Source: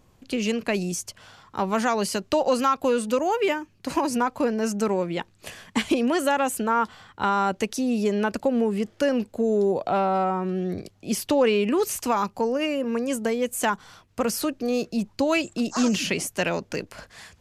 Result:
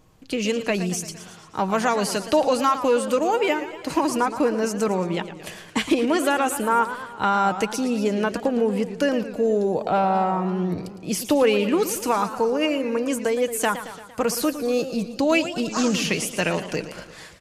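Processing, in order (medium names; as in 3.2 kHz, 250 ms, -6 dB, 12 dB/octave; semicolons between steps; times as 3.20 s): comb 6.4 ms, depth 32%; modulated delay 114 ms, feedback 59%, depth 171 cents, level -12 dB; trim +1.5 dB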